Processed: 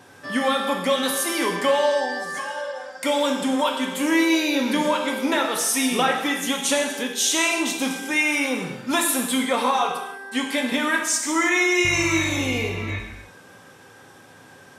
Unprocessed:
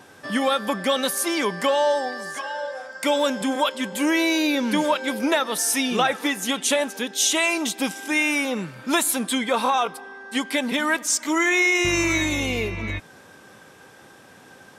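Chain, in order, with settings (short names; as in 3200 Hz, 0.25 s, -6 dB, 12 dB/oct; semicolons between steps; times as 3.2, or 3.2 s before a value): non-linear reverb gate 0.35 s falling, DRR 1 dB; gain -2 dB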